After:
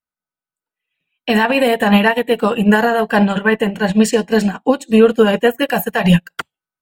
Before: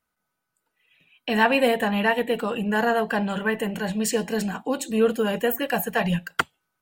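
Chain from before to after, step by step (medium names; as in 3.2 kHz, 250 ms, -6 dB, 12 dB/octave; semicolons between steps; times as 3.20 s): 3.24–5.59 s: treble shelf 9.5 kHz -10.5 dB; loudness maximiser +16.5 dB; upward expansion 2.5:1, over -26 dBFS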